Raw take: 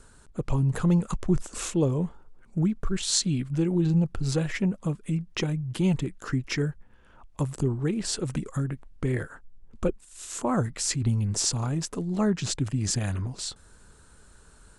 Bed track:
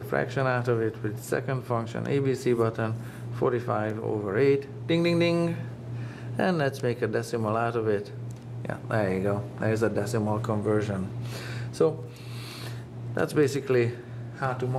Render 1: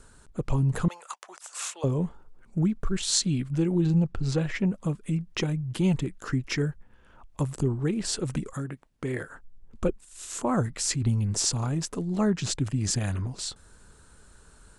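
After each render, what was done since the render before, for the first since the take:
0:00.88–0:01.84: high-pass filter 720 Hz 24 dB per octave
0:04.03–0:04.66: high-frequency loss of the air 62 metres
0:08.53–0:09.28: high-pass filter 250 Hz 6 dB per octave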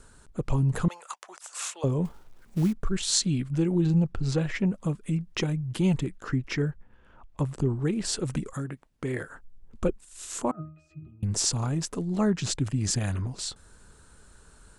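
0:02.05–0:02.73: log-companded quantiser 6 bits
0:06.17–0:07.69: high-shelf EQ 5,900 Hz −11.5 dB
0:10.51–0:11.23: resonances in every octave D#, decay 0.36 s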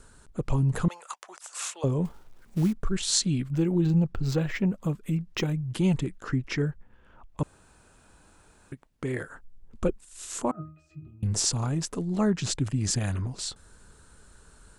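0:03.42–0:05.54: linearly interpolated sample-rate reduction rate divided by 2×
0:07.43–0:08.72: fill with room tone
0:10.52–0:11.41: double-tracking delay 28 ms −9.5 dB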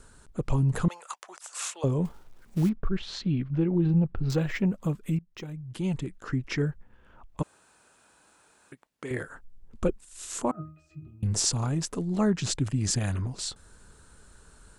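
0:02.69–0:04.30: high-frequency loss of the air 310 metres
0:05.19–0:06.63: fade in, from −19 dB
0:07.42–0:09.11: high-pass filter 540 Hz 6 dB per octave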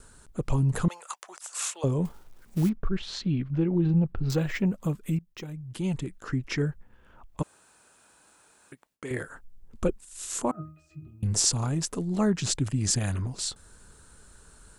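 noise gate with hold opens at −58 dBFS
high-shelf EQ 7,700 Hz +6.5 dB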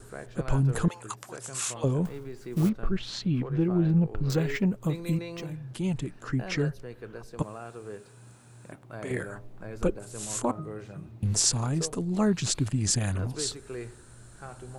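mix in bed track −15 dB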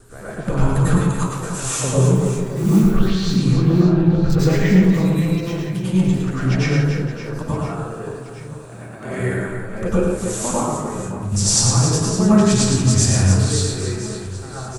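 on a send: reverse bouncing-ball delay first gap 110 ms, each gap 1.6×, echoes 5
on the sum: dense smooth reverb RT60 0.63 s, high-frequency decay 0.6×, pre-delay 85 ms, DRR −8.5 dB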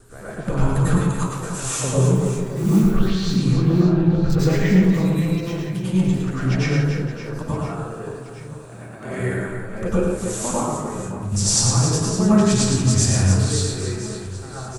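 level −2 dB

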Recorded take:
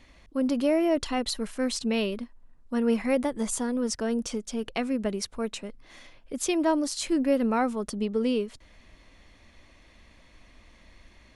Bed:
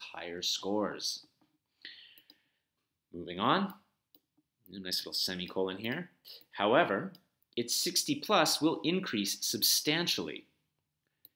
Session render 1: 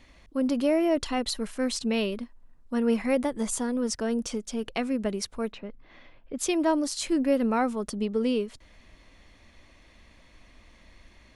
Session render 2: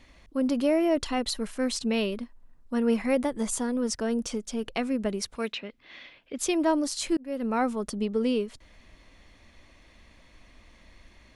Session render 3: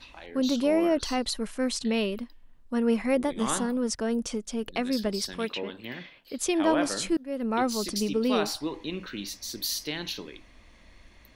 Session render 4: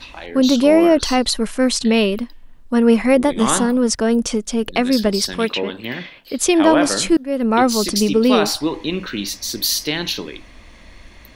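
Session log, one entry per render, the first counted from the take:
0:05.52–0:06.39: high-frequency loss of the air 300 metres
0:05.35–0:06.38: meter weighting curve D; 0:07.17–0:07.63: fade in
mix in bed −3.5 dB
level +11.5 dB; brickwall limiter −3 dBFS, peak gain reduction 2 dB

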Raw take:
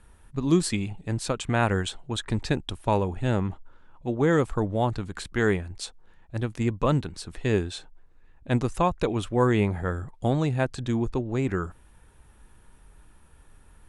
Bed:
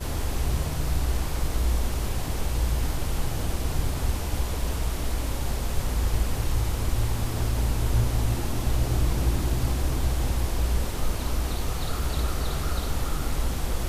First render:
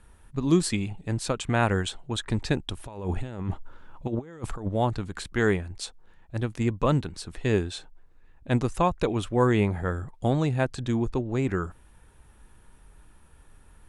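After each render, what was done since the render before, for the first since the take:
0:02.77–0:04.69: compressor whose output falls as the input rises −30 dBFS, ratio −0.5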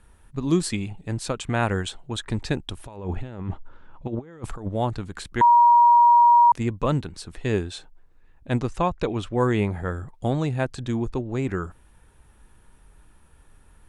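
0:02.96–0:04.44: high-frequency loss of the air 95 metres
0:05.41–0:06.52: beep over 952 Hz −11 dBFS
0:08.61–0:09.37: low-pass filter 7,000 Hz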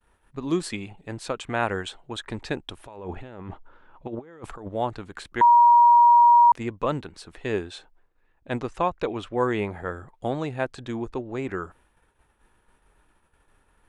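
downward expander −48 dBFS
bass and treble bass −10 dB, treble −7 dB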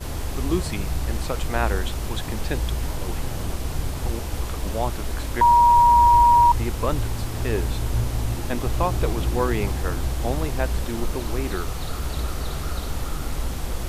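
mix in bed −0.5 dB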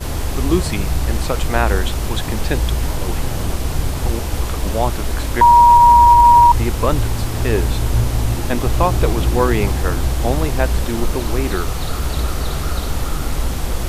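level +7 dB
brickwall limiter −2 dBFS, peak gain reduction 3 dB

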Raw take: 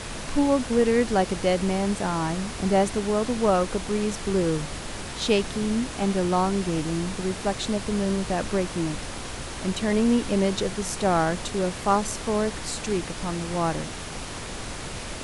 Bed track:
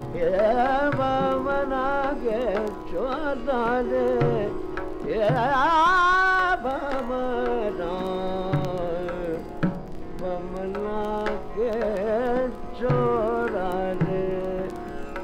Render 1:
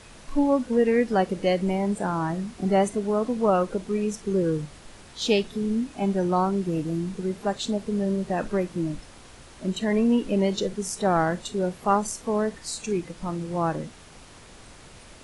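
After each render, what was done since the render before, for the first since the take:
noise reduction from a noise print 13 dB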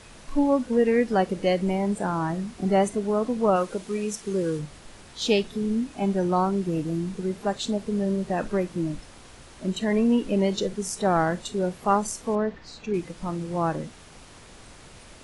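0:03.56–0:04.59: spectral tilt +1.5 dB per octave
0:12.35–0:12.94: high-frequency loss of the air 210 metres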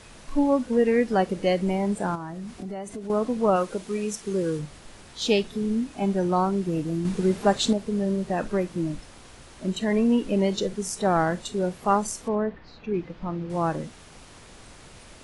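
0:02.15–0:03.10: downward compressor 5 to 1, threshold −32 dBFS
0:07.05–0:07.73: clip gain +6 dB
0:12.28–0:13.50: high-frequency loss of the air 240 metres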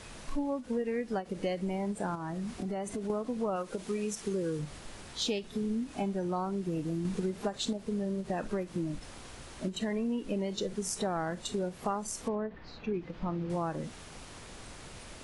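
downward compressor, threshold −30 dBFS, peak gain reduction 14.5 dB
every ending faded ahead of time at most 270 dB per second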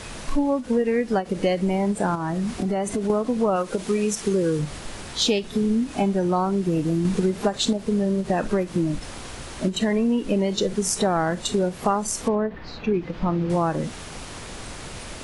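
level +11 dB

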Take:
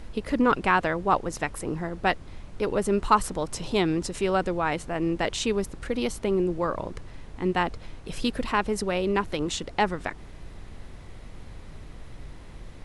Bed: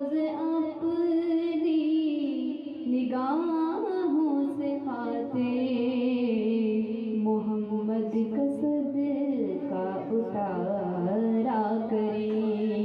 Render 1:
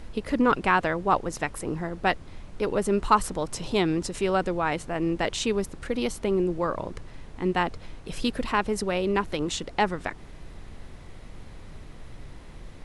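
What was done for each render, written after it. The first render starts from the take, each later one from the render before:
hum removal 50 Hz, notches 2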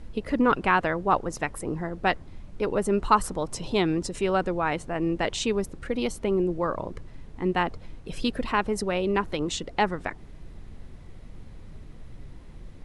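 broadband denoise 7 dB, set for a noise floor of −44 dBFS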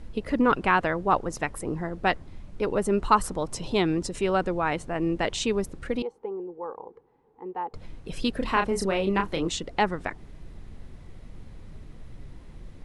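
0:06.02–0:07.74: pair of resonant band-passes 620 Hz, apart 0.81 octaves
0:08.38–0:09.48: double-tracking delay 31 ms −5.5 dB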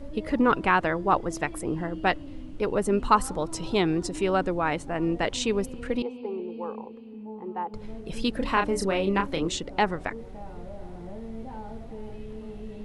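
mix in bed −13.5 dB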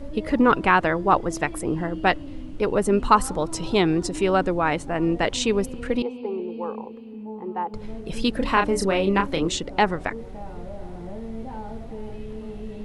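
level +4 dB
brickwall limiter −3 dBFS, peak gain reduction 1 dB

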